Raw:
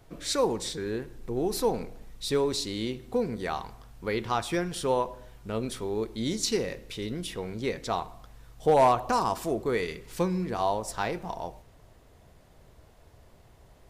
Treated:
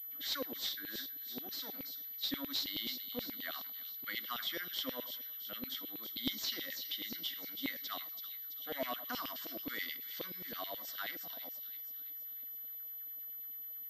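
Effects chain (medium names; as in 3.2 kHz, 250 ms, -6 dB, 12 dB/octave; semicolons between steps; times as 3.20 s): treble shelf 3.8 kHz +10 dB; in parallel at -0.5 dB: peak limiter -17 dBFS, peak gain reduction 9 dB; on the sum: saturation -11 dBFS, distortion -20 dB; vowel filter i; static phaser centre 1 kHz, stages 4; LFO high-pass saw down 9.4 Hz 460–3100 Hz; on a send: feedback echo behind a high-pass 331 ms, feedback 55%, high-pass 3.4 kHz, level -6 dB; on the sum: class-D stage that switches slowly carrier 12 kHz; trim +9.5 dB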